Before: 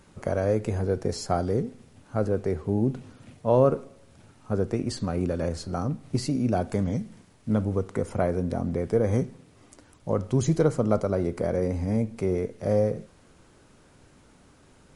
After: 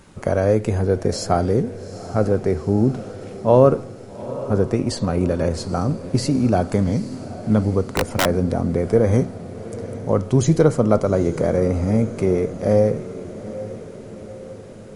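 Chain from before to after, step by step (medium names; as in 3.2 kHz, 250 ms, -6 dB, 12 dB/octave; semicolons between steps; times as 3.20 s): echo that smears into a reverb 831 ms, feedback 58%, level -14.5 dB; 7.86–8.26 s: integer overflow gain 17.5 dB; trim +7 dB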